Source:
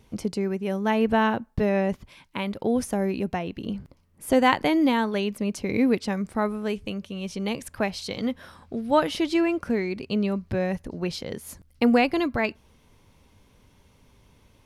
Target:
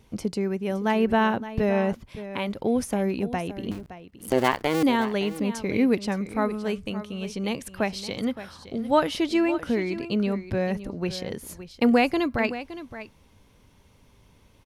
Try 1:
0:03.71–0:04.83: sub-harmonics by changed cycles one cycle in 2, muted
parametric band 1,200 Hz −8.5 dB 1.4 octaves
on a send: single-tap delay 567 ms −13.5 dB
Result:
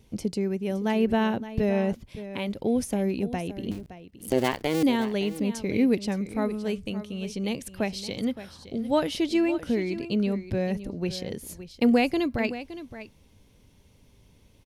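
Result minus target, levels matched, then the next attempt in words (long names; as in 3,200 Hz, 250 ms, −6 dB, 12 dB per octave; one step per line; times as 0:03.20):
1,000 Hz band −4.5 dB
0:03.71–0:04.83: sub-harmonics by changed cycles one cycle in 2, muted
on a send: single-tap delay 567 ms −13.5 dB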